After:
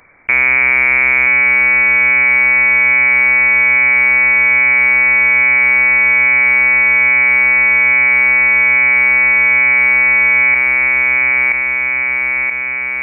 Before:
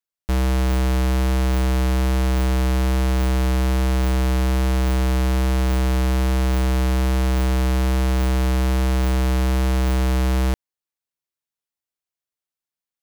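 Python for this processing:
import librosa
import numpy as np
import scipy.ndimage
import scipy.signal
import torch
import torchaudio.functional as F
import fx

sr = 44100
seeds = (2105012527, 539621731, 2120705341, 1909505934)

y = fx.highpass_res(x, sr, hz=410.0, q=4.9)
y = fx.echo_feedback(y, sr, ms=977, feedback_pct=28, wet_db=-5)
y = fx.freq_invert(y, sr, carrier_hz=2700)
y = fx.env_flatten(y, sr, amount_pct=70)
y = F.gain(torch.from_numpy(y), 8.0).numpy()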